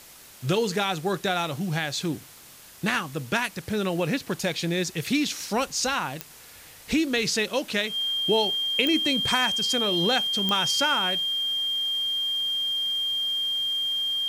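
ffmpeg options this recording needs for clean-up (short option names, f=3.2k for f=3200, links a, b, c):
-af "adeclick=t=4,bandreject=f=3.2k:w=30,afftdn=nr=24:nf=-48"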